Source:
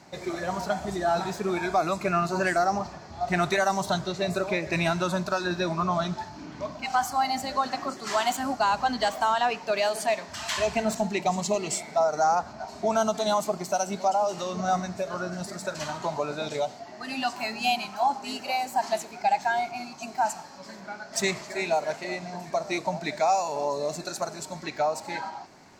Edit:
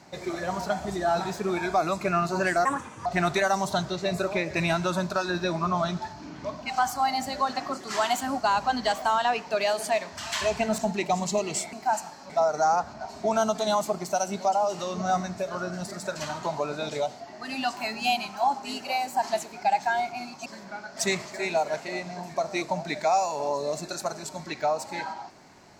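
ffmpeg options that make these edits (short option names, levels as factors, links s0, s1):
-filter_complex "[0:a]asplit=6[s0][s1][s2][s3][s4][s5];[s0]atrim=end=2.654[s6];[s1]atrim=start=2.65:end=3.22,asetpts=PTS-STARTPTS,asetrate=61740,aresample=44100[s7];[s2]atrim=start=3.216:end=11.892[s8];[s3]atrim=start=20.048:end=20.622[s9];[s4]atrim=start=11.888:end=20.052[s10];[s5]atrim=start=20.618[s11];[s6][s7]acrossfade=d=0.004:c1=hsin:c2=hsin[s12];[s12][s8]acrossfade=d=0.004:c1=hsin:c2=hsin[s13];[s13][s9]acrossfade=d=0.004:c1=hsin:c2=hsin[s14];[s14][s10]acrossfade=d=0.004:c1=hsin:c2=hsin[s15];[s15][s11]acrossfade=d=0.004:c1=hsin:c2=hsin"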